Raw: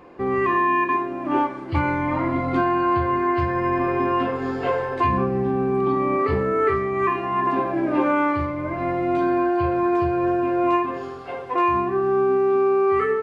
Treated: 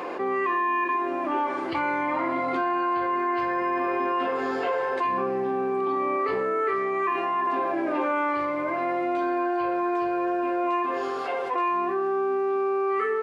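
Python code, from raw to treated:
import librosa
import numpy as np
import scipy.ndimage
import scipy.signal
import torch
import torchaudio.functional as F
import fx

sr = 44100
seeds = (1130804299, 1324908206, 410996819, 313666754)

y = scipy.signal.sosfilt(scipy.signal.butter(2, 400.0, 'highpass', fs=sr, output='sos'), x)
y = fx.env_flatten(y, sr, amount_pct=70)
y = y * librosa.db_to_amplitude(-6.0)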